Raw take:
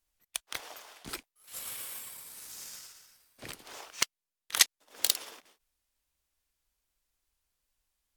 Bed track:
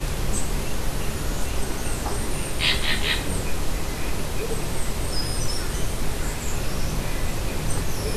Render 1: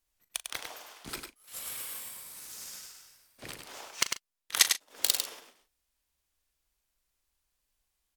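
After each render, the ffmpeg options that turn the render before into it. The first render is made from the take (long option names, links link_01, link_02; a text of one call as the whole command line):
ffmpeg -i in.wav -filter_complex "[0:a]asplit=2[link_01][link_02];[link_02]adelay=39,volume=-13.5dB[link_03];[link_01][link_03]amix=inputs=2:normalize=0,asplit=2[link_04][link_05];[link_05]aecho=0:1:100:0.501[link_06];[link_04][link_06]amix=inputs=2:normalize=0" out.wav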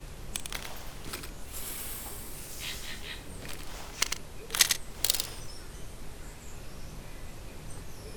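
ffmpeg -i in.wav -i bed.wav -filter_complex "[1:a]volume=-17.5dB[link_01];[0:a][link_01]amix=inputs=2:normalize=0" out.wav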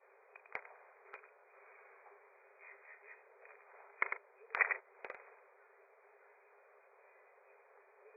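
ffmpeg -i in.wav -af "afftfilt=real='re*between(b*sr/4096,380,2500)':imag='im*between(b*sr/4096,380,2500)':win_size=4096:overlap=0.75,agate=range=-12dB:threshold=-40dB:ratio=16:detection=peak" out.wav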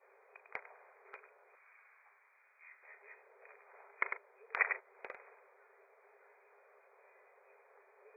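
ffmpeg -i in.wav -filter_complex "[0:a]asettb=1/sr,asplit=3[link_01][link_02][link_03];[link_01]atrim=end=1.554[link_04];[link_02]atrim=start=1.55:end=2.83,asetpts=PTS-STARTPTS,afade=type=in:duration=0.004:curve=qsin,afade=type=out:start_time=1.276:duration=0.004:curve=qsin,highpass=1300[link_05];[link_03]atrim=start=2.826[link_06];[link_04][link_05]acrossfade=duration=0.004:curve1=hsin:curve2=qsin[link_07];[link_07][link_06]acrossfade=duration=0.004:curve1=qsin:curve2=hsin" out.wav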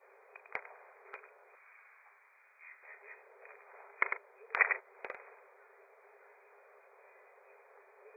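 ffmpeg -i in.wav -af "volume=4dB" out.wav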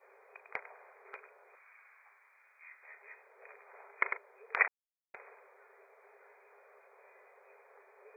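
ffmpeg -i in.wav -filter_complex "[0:a]asettb=1/sr,asplit=3[link_01][link_02][link_03];[link_01]atrim=end=1.624[link_04];[link_02]atrim=start=1.62:end=3.38,asetpts=PTS-STARTPTS,afade=type=in:duration=0.004:curve=qsin,afade=type=out:start_time=1.756:duration=0.004:curve=qsin,highpass=frequency=590:poles=1[link_05];[link_03]atrim=start=3.376[link_06];[link_04][link_05]acrossfade=duration=0.004:curve1=hsin:curve2=qsin[link_07];[link_07][link_06]acrossfade=duration=0.004:curve1=qsin:curve2=hsin,asplit=3[link_08][link_09][link_10];[link_08]atrim=end=4.68,asetpts=PTS-STARTPTS,afade=type=out:start_time=4.676:duration=0.004:curve=hsin[link_11];[link_09]atrim=start=4.68:end=5.14,asetpts=PTS-STARTPTS,volume=0[link_12];[link_10]atrim=start=5.14,asetpts=PTS-STARTPTS,afade=type=in:duration=0.004:curve=hsin[link_13];[link_11][link_12][link_13]concat=n=3:v=0:a=1" out.wav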